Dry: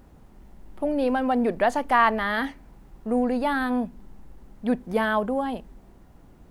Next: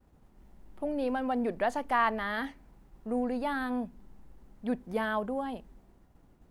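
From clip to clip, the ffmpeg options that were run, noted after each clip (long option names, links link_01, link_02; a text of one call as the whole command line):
ffmpeg -i in.wav -af "agate=range=-33dB:threshold=-47dB:ratio=3:detection=peak,volume=-7.5dB" out.wav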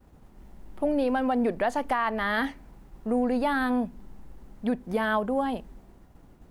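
ffmpeg -i in.wav -af "alimiter=limit=-24dB:level=0:latency=1:release=234,volume=7.5dB" out.wav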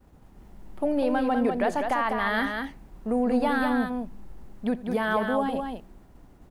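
ffmpeg -i in.wav -af "aecho=1:1:85|199:0.1|0.562" out.wav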